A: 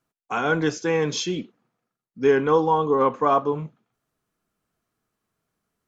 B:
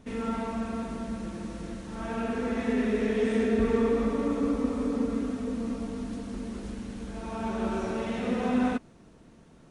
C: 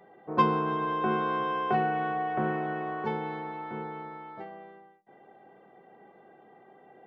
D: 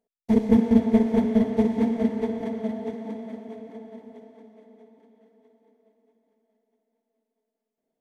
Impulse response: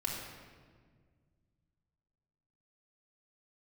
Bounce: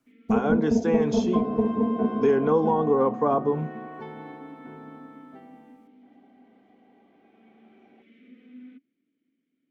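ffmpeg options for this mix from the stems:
-filter_complex "[0:a]volume=1dB[a];[1:a]asplit=2[b][c];[c]highpass=f=720:p=1,volume=17dB,asoftclip=type=tanh:threshold=-12.5dB[d];[b][d]amix=inputs=2:normalize=0,lowpass=f=1.6k:p=1,volume=-6dB,asplit=3[e][f][g];[e]bandpass=f=270:t=q:w=8,volume=0dB[h];[f]bandpass=f=2.29k:t=q:w=8,volume=-6dB[i];[g]bandpass=f=3.01k:t=q:w=8,volume=-9dB[j];[h][i][j]amix=inputs=3:normalize=0,volume=-16dB[k];[2:a]adelay=950,volume=-11dB,asplit=2[l][m];[m]volume=-5.5dB[n];[3:a]afwtdn=0.0447,volume=1dB[o];[4:a]atrim=start_sample=2205[p];[n][p]afir=irnorm=-1:irlink=0[q];[a][k][l][o][q]amix=inputs=5:normalize=0,acrossover=split=410|970[r][s][t];[r]acompressor=threshold=-22dB:ratio=4[u];[s]acompressor=threshold=-22dB:ratio=4[v];[t]acompressor=threshold=-42dB:ratio=4[w];[u][v][w]amix=inputs=3:normalize=0"

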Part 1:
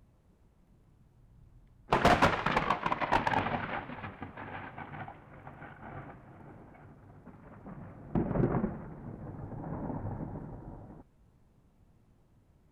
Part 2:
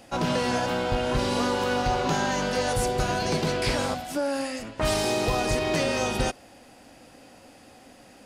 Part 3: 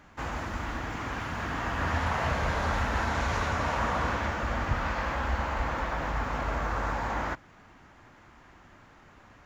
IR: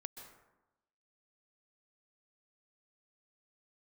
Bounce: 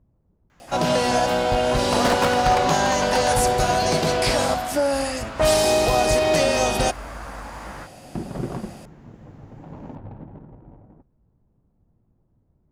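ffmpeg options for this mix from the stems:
-filter_complex "[0:a]adynamicsmooth=sensitivity=6.5:basefreq=900,volume=0dB[a];[1:a]equalizer=f=670:t=o:w=0.58:g=8.5,adelay=600,volume=2dB[b];[2:a]flanger=delay=15:depth=7.7:speed=2.5,adelay=500,volume=-3.5dB[c];[a][b][c]amix=inputs=3:normalize=0,highshelf=f=4k:g=7"

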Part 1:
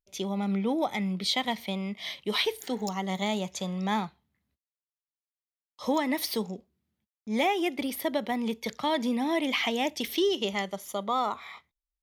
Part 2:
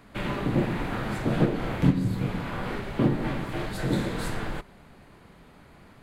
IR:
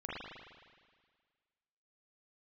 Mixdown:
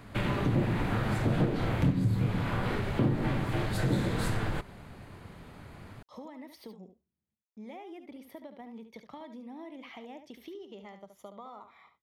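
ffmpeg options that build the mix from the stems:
-filter_complex "[0:a]highshelf=f=2.4k:g=-11.5,acompressor=threshold=-34dB:ratio=6,adynamicequalizer=threshold=0.00251:dfrequency=2000:dqfactor=0.7:tfrequency=2000:tqfactor=0.7:attack=5:release=100:ratio=0.375:range=2:mode=cutabove:tftype=highshelf,adelay=300,volume=-9dB,asplit=2[a][b];[b]volume=-9.5dB[c];[1:a]equalizer=f=100:w=2.1:g=9,aeval=exprs='0.708*(cos(1*acos(clip(val(0)/0.708,-1,1)))-cos(1*PI/2))+0.126*(cos(5*acos(clip(val(0)/0.708,-1,1)))-cos(5*PI/2))':c=same,volume=-3.5dB[d];[c]aecho=0:1:72:1[e];[a][d][e]amix=inputs=3:normalize=0,acompressor=threshold=-28dB:ratio=2"

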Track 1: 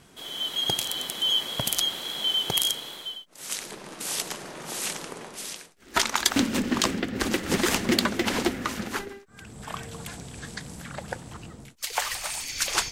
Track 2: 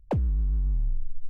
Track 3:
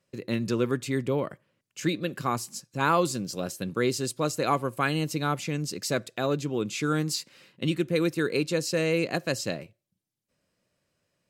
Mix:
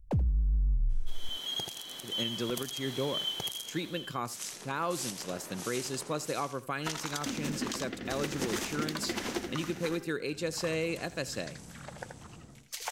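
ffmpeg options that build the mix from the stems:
-filter_complex "[0:a]equalizer=f=6k:t=o:w=0.34:g=4.5,adelay=900,volume=-9dB,asplit=2[a][b];[b]volume=-6.5dB[c];[1:a]bass=f=250:g=7,treble=f=4k:g=8,volume=-7.5dB,asplit=2[d][e];[e]volume=-14.5dB[f];[2:a]lowshelf=f=360:g=-3.5,adelay=1900,volume=-4dB,asplit=2[g][h];[h]volume=-19.5dB[i];[c][f][i]amix=inputs=3:normalize=0,aecho=0:1:81:1[j];[a][d][g][j]amix=inputs=4:normalize=0,alimiter=limit=-21.5dB:level=0:latency=1:release=230"

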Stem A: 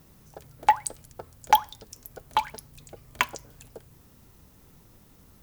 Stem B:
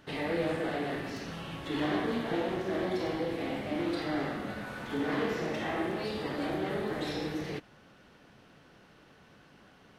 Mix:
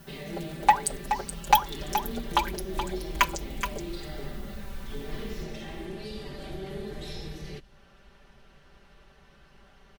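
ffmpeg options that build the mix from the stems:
-filter_complex "[0:a]asoftclip=type=tanh:threshold=-9.5dB,volume=1dB,asplit=2[a][b];[b]volume=-9dB[c];[1:a]acrossover=split=390|3000[d][e][f];[e]acompressor=threshold=-52dB:ratio=3[g];[d][g][f]amix=inputs=3:normalize=0,volume=-2.5dB[h];[c]aecho=0:1:424:1[i];[a][h][i]amix=inputs=3:normalize=0,asubboost=boost=10:cutoff=62,aecho=1:1:5.1:1"

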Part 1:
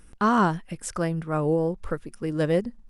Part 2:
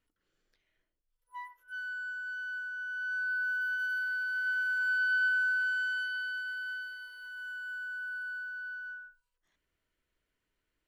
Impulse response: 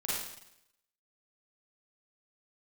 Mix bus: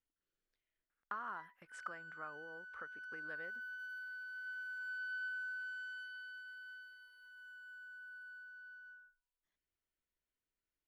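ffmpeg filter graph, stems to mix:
-filter_complex "[0:a]agate=range=-19dB:threshold=-39dB:ratio=16:detection=peak,acompressor=threshold=-31dB:ratio=10,bandpass=f=1.5k:t=q:w=2.3:csg=0,adelay=900,volume=-3dB[a];[1:a]volume=-14dB[b];[a][b]amix=inputs=2:normalize=0"

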